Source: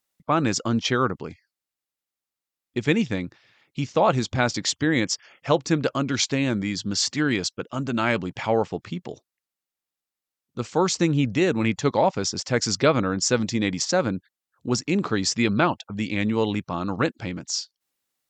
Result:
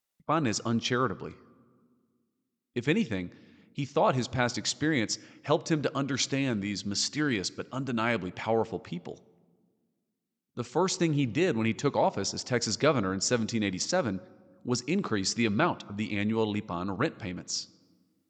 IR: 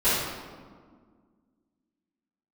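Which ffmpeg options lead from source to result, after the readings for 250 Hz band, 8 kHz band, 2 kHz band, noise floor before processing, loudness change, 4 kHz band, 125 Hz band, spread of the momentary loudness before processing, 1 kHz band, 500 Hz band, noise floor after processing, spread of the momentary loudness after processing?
-5.5 dB, -5.5 dB, -5.5 dB, under -85 dBFS, -5.5 dB, -5.5 dB, -5.5 dB, 11 LU, -5.5 dB, -5.5 dB, -82 dBFS, 11 LU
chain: -filter_complex "[0:a]asplit=2[a][b];[1:a]atrim=start_sample=2205[c];[b][c]afir=irnorm=-1:irlink=0,volume=-36dB[d];[a][d]amix=inputs=2:normalize=0,volume=-5.5dB"

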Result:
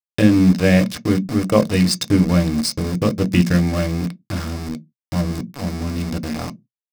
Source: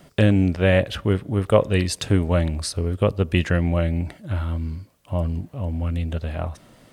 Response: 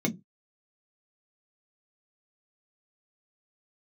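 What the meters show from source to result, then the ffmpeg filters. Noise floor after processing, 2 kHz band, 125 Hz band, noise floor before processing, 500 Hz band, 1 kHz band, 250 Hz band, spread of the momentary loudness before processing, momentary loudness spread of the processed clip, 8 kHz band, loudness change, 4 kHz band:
under -85 dBFS, +2.0 dB, +1.5 dB, -54 dBFS, +0.5 dB, +2.0 dB, +7.5 dB, 10 LU, 13 LU, +6.0 dB, +3.5 dB, +5.0 dB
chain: -filter_complex "[0:a]highshelf=f=7.2k:g=4,aeval=exprs='val(0)*gte(abs(val(0)),0.0562)':c=same,equalizer=f=125:t=o:w=0.33:g=6,equalizer=f=400:t=o:w=0.33:g=-9,equalizer=f=800:t=o:w=0.33:g=-4,equalizer=f=3.15k:t=o:w=0.33:g=-4,equalizer=f=5k:t=o:w=0.33:g=11,equalizer=f=8k:t=o:w=0.33:g=4,asplit=2[a][b];[1:a]atrim=start_sample=2205,lowshelf=f=170:g=-11[c];[b][c]afir=irnorm=-1:irlink=0,volume=-9.5dB[d];[a][d]amix=inputs=2:normalize=0,volume=-1.5dB"

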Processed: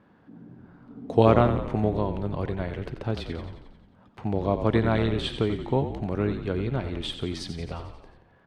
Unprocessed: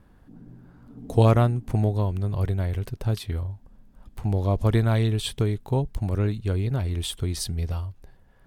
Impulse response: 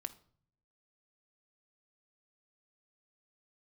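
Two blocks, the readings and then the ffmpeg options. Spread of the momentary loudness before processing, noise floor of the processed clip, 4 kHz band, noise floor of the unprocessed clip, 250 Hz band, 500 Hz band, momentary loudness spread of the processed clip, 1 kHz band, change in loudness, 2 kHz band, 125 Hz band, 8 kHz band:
10 LU, -59 dBFS, -0.5 dB, -55 dBFS, +1.5 dB, +3.0 dB, 15 LU, +3.0 dB, -1.5 dB, +2.5 dB, -6.0 dB, under -10 dB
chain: -filter_complex "[0:a]highpass=180,lowpass=3.3k,asplit=9[a][b][c][d][e][f][g][h][i];[b]adelay=89,afreqshift=-37,volume=-9.5dB[j];[c]adelay=178,afreqshift=-74,volume=-13.8dB[k];[d]adelay=267,afreqshift=-111,volume=-18.1dB[l];[e]adelay=356,afreqshift=-148,volume=-22.4dB[m];[f]adelay=445,afreqshift=-185,volume=-26.7dB[n];[g]adelay=534,afreqshift=-222,volume=-31dB[o];[h]adelay=623,afreqshift=-259,volume=-35.3dB[p];[i]adelay=712,afreqshift=-296,volume=-39.6dB[q];[a][j][k][l][m][n][o][p][q]amix=inputs=9:normalize=0,volume=2.5dB"

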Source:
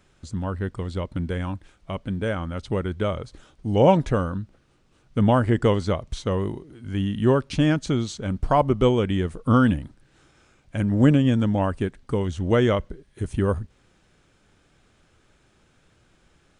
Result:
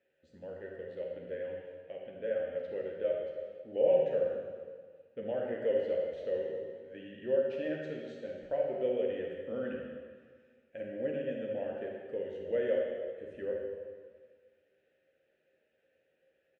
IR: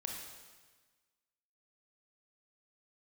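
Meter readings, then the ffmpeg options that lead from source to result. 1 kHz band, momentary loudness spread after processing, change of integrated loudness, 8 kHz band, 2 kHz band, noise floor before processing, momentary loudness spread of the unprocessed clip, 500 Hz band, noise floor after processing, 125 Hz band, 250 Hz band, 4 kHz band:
-23.0 dB, 15 LU, -12.0 dB, under -30 dB, -14.0 dB, -62 dBFS, 15 LU, -6.5 dB, -75 dBFS, -30.5 dB, -21.0 dB, under -15 dB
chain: -filter_complex "[0:a]highshelf=f=3.7k:g=-8.5,bandreject=f=50:t=h:w=6,bandreject=f=100:t=h:w=6,bandreject=f=150:t=h:w=6,asplit=2[a][b];[b]alimiter=limit=-15dB:level=0:latency=1,volume=0.5dB[c];[a][c]amix=inputs=2:normalize=0,asplit=3[d][e][f];[d]bandpass=f=530:t=q:w=8,volume=0dB[g];[e]bandpass=f=1.84k:t=q:w=8,volume=-6dB[h];[f]bandpass=f=2.48k:t=q:w=8,volume=-9dB[i];[g][h][i]amix=inputs=3:normalize=0,asplit=2[j][k];[k]adelay=13,volume=-7dB[l];[j][l]amix=inputs=2:normalize=0[m];[1:a]atrim=start_sample=2205,asetrate=36603,aresample=44100[n];[m][n]afir=irnorm=-1:irlink=0,volume=-7dB"

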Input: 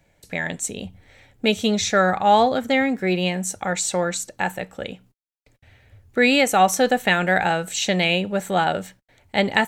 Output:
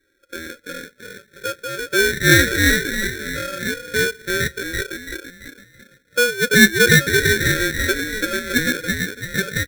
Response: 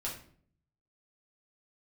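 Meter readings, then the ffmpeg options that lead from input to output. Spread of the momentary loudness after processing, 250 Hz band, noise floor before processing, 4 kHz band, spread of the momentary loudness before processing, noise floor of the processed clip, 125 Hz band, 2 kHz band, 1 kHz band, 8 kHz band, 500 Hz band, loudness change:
20 LU, +0.5 dB, -64 dBFS, +3.5 dB, 13 LU, -59 dBFS, +6.0 dB, +7.0 dB, -11.0 dB, +3.5 dB, -1.0 dB, +3.0 dB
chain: -filter_complex "[0:a]afftfilt=real='re*pow(10,13/40*sin(2*PI*(1.6*log(max(b,1)*sr/1024/100)/log(2)-(0.37)*(pts-256)/sr)))':imag='im*pow(10,13/40*sin(2*PI*(1.6*log(max(b,1)*sr/1024/100)/log(2)-(0.37)*(pts-256)/sr)))':win_size=1024:overlap=0.75,asplit=2[a][b];[b]asplit=5[c][d][e][f][g];[c]adelay=335,afreqshift=64,volume=-3dB[h];[d]adelay=670,afreqshift=128,volume=-11dB[i];[e]adelay=1005,afreqshift=192,volume=-18.9dB[j];[f]adelay=1340,afreqshift=256,volume=-26.9dB[k];[g]adelay=1675,afreqshift=320,volume=-34.8dB[l];[h][i][j][k][l]amix=inputs=5:normalize=0[m];[a][m]amix=inputs=2:normalize=0,afftfilt=real='re*between(b*sr/4096,390,1100)':imag='im*between(b*sr/4096,390,1100)':win_size=4096:overlap=0.75,aeval=exprs='val(0)*sgn(sin(2*PI*970*n/s))':c=same"

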